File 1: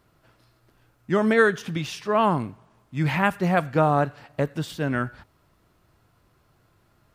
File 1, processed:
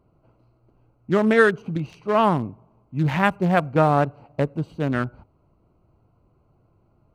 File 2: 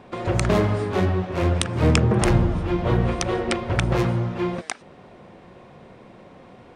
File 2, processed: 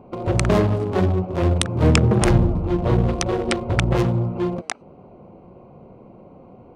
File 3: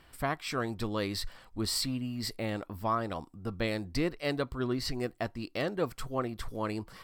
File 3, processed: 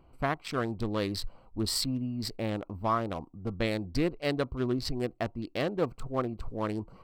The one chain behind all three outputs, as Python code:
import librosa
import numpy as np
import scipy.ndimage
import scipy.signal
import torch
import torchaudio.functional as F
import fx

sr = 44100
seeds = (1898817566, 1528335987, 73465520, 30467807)

y = fx.wiener(x, sr, points=25)
y = y * 10.0 ** (2.5 / 20.0)